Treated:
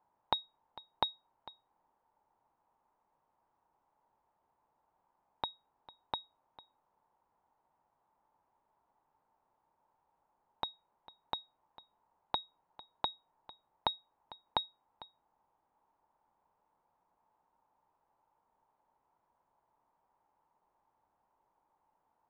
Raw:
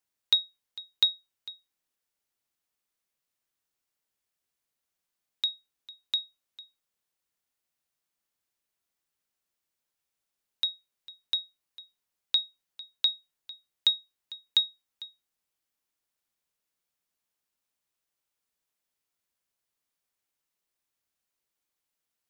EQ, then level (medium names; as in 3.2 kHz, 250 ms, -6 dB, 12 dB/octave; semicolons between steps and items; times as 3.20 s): resonant low-pass 900 Hz, resonance Q 6.7; +11.0 dB